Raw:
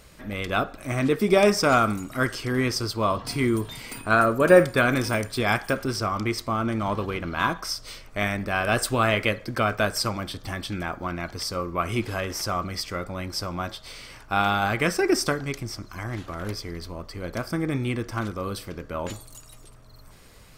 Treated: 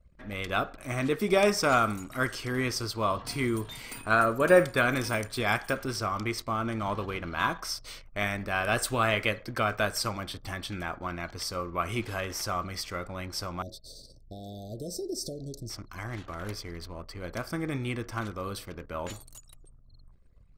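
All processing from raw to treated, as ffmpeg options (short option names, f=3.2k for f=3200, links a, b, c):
-filter_complex "[0:a]asettb=1/sr,asplit=3[a][b][c];[a]atrim=end=13.624[d];[b]atrim=start=13.62:end=15.7,asetpts=PTS-STARTPTS,afade=t=in:d=0.004:c=qsin,afade=t=out:st=2.076:d=0.004:c=qsin,acompressor=threshold=-28dB:ratio=2.5:attack=3.2:release=140:knee=1:detection=peak,asuperstop=centerf=1600:order=20:qfactor=0.51[e];[c]atrim=start=15.696[f];[d][e]acrossfade=d=0.004:c1=hsin:c2=qsin[g];[g][f]acrossfade=d=0.004:c1=qsin:c2=hsin,anlmdn=0.0251,equalizer=f=220:w=0.47:g=-3.5,bandreject=f=5k:w=22,volume=-3dB"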